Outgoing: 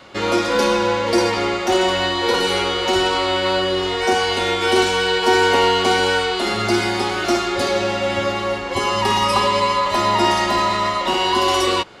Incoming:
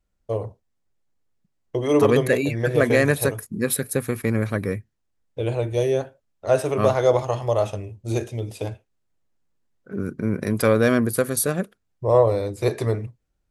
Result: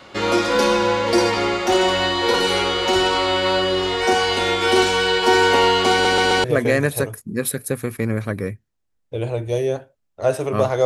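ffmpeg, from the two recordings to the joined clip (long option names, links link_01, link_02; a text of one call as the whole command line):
ffmpeg -i cue0.wav -i cue1.wav -filter_complex "[0:a]apad=whole_dur=10.85,atrim=end=10.85,asplit=4[link_01][link_02][link_03][link_04];[link_01]atrim=end=6.052[link_05];[link_02]atrim=start=5.918:end=6.052[link_06];[link_03]atrim=start=5.918:end=6.052[link_07];[link_04]atrim=start=5.918:end=6.052[link_08];[1:a]atrim=start=2.688:end=7.1[link_09];[link_05][link_06]acrossfade=duration=0.004:curve1=hsin:curve2=hsin[link_10];[link_10][link_07]acrossfade=duration=0.004:curve1=hsin:curve2=hsin[link_11];[link_11][link_08]acrossfade=duration=0.004:curve1=hsin:curve2=hsin[link_12];[link_12][link_09]acrossfade=duration=0.004:curve1=hsin:curve2=hsin" out.wav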